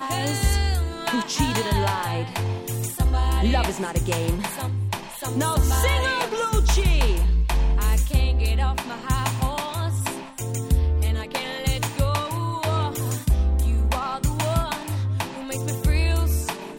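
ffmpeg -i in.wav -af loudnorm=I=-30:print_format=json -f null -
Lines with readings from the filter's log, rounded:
"input_i" : "-24.0",
"input_tp" : "-7.4",
"input_lra" : "2.6",
"input_thresh" : "-34.0",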